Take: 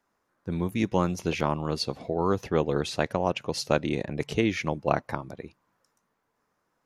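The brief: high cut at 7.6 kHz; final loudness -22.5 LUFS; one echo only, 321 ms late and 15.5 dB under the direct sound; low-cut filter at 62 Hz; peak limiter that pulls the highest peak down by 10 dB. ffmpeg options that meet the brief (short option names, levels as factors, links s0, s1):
-af "highpass=62,lowpass=7600,alimiter=limit=0.141:level=0:latency=1,aecho=1:1:321:0.168,volume=2.82"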